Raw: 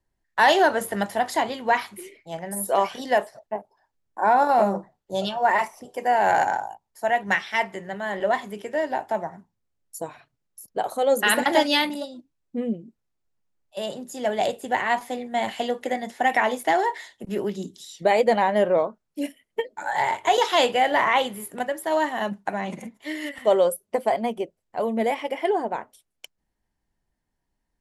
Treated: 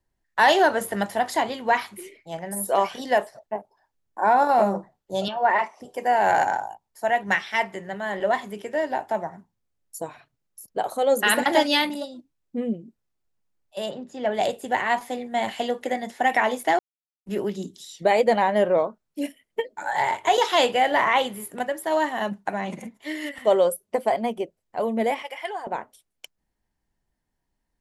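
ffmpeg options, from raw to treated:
-filter_complex "[0:a]asettb=1/sr,asplit=3[s0][s1][s2];[s0]atrim=end=5.284[s3];[s1]atrim=start=5.28:end=5.8,asetpts=PTS-STARTPTS,afade=t=in:d=0.004:c=qsin,afade=t=out:st=0.516:d=0.004:c=qsin,highpass=210,lowpass=3500[s4];[s2]atrim=start=5.796[s5];[s3][s4]acrossfade=d=0.004:c1=hsin:c2=qsin[s6];[s6][s5]acrossfade=d=0.004:c1=qsin:c2=hsin,asplit=3[s7][s8][s9];[s7]afade=t=out:st=13.89:d=0.02[s10];[s8]lowpass=3300,afade=t=in:st=13.89:d=0.02,afade=t=out:st=14.33:d=0.02[s11];[s9]afade=t=in:st=14.33:d=0.02[s12];[s10][s11][s12]amix=inputs=3:normalize=0,asettb=1/sr,asplit=3[s13][s14][s15];[s13]atrim=end=25.224[s16];[s14]atrim=start=25.22:end=25.67,asetpts=PTS-STARTPTS,afade=t=in:d=0.004:c=qsin,afade=t=out:st=0.446:d=0.004:c=qsin,highpass=980[s17];[s15]atrim=start=25.666[s18];[s16][s17]acrossfade=d=0.004:c1=hsin:c2=qsin[s19];[s19][s18]acrossfade=d=0.004:c1=qsin:c2=hsin,asplit=3[s20][s21][s22];[s20]atrim=end=16.79,asetpts=PTS-STARTPTS,afade=t=out:st=16.786:d=0.004:c=hsin[s23];[s21]atrim=start=16.79:end=17.26,asetpts=PTS-STARTPTS,volume=0[s24];[s22]atrim=start=17.26,asetpts=PTS-STARTPTS,afade=t=in:d=0.004:c=hsin[s25];[s23][s24][s25]concat=n=3:v=0:a=1"

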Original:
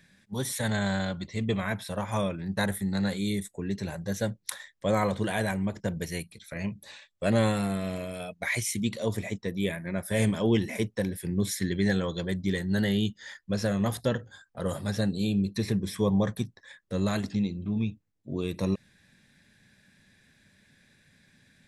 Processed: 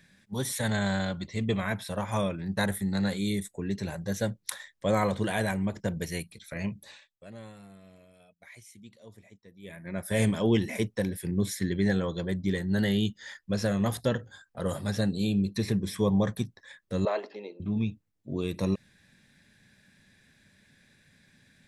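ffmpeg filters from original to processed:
-filter_complex "[0:a]asettb=1/sr,asplit=3[s0][s1][s2];[s0]atrim=end=11.314[s3];[s1]atrim=start=11.31:end=12.79,asetpts=PTS-STARTPTS,afade=t=in:d=0.004:c=qsin,afade=t=out:st=1.476:d=0.004:c=qsin,adynamicequalizer=threshold=0.00562:dfrequency=1800:dqfactor=0.7:tfrequency=1800:tqfactor=0.7:attack=5:release=100:ratio=0.375:range=2.5:mode=cutabove:tftype=highshelf[s4];[s2]atrim=start=12.786[s5];[s3][s4]acrossfade=d=0.004:c1=hsin:c2=qsin[s6];[s6][s5]acrossfade=d=0.004:c1=qsin:c2=hsin,asettb=1/sr,asplit=3[s7][s8][s9];[s7]atrim=end=17.054[s10];[s8]atrim=start=17.05:end=17.6,asetpts=PTS-STARTPTS,afade=t=in:d=0.004:c=qsin,afade=t=out:st=0.546:d=0.004:c=qsin,highpass=f=410:w=0.5412,highpass=f=410:w=1.3066,equalizer=f=420:t=q:w=4:g=7,equalizer=f=600:t=q:w=4:g=7,equalizer=f=940:t=q:w=4:g=5,equalizer=f=1500:t=q:w=4:g=-5,equalizer=f=2300:t=q:w=4:g=-3,equalizer=f=3600:t=q:w=4:g=-10,lowpass=f=4000:w=0.5412,lowpass=f=4000:w=1.3066[s11];[s9]atrim=start=17.596[s12];[s10][s11]acrossfade=d=0.004:c1=hsin:c2=qsin[s13];[s13][s12]acrossfade=d=0.004:c1=qsin:c2=hsin,asplit=3[s14][s15][s16];[s14]atrim=end=7.25,asetpts=PTS-STARTPTS,afade=t=out:st=6.76:d=0.49:silence=0.0841395[s17];[s15]atrim=start=7.25:end=9.62,asetpts=PTS-STARTPTS,volume=0.0841[s18];[s16]atrim=start=9.62,asetpts=PTS-STARTPTS,afade=t=in:d=0.49:silence=0.0841395[s19];[s17][s18][s19]concat=n=3:v=0:a=1"

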